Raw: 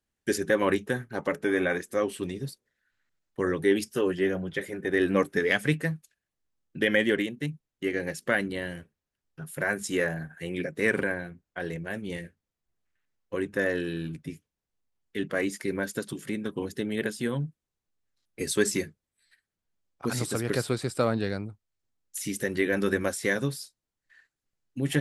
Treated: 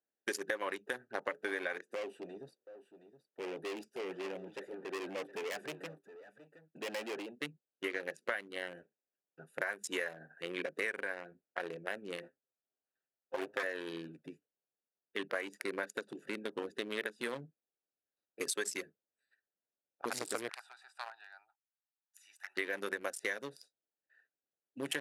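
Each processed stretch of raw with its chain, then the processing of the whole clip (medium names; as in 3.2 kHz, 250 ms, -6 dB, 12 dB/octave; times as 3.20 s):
1.95–7.41 s: valve stage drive 32 dB, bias 0.3 + delay 719 ms -13 dB
12.22–13.63 s: comb filter that takes the minimum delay 7.6 ms + loudspeaker Doppler distortion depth 0.17 ms
20.49–22.57 s: elliptic high-pass 800 Hz + compression 1.5:1, threshold -45 dBFS
whole clip: local Wiener filter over 41 samples; high-pass 630 Hz 12 dB/octave; compression 10:1, threshold -38 dBFS; trim +5 dB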